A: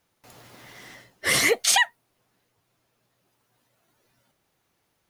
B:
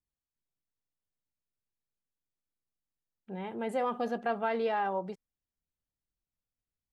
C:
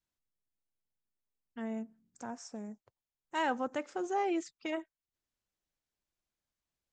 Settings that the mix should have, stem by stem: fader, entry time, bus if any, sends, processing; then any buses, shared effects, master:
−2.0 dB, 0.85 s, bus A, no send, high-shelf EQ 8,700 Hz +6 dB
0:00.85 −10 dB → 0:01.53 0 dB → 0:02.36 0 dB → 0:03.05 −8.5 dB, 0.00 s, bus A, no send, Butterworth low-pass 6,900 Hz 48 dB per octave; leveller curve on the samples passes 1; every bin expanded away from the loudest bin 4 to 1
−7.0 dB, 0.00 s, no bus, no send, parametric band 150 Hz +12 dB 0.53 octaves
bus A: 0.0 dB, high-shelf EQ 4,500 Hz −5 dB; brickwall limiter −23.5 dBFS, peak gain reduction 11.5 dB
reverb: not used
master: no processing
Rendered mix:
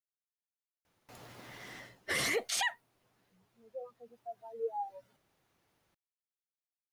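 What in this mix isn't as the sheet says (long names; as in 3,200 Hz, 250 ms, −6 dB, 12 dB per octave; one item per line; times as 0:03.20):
stem A: missing high-shelf EQ 8,700 Hz +6 dB
stem C: muted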